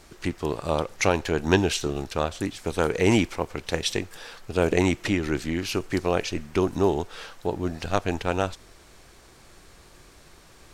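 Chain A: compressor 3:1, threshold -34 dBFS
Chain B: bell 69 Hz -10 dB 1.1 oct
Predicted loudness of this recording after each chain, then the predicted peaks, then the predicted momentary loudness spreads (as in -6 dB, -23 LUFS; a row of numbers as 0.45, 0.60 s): -36.5, -26.5 LUFS; -17.0, -5.0 dBFS; 17, 9 LU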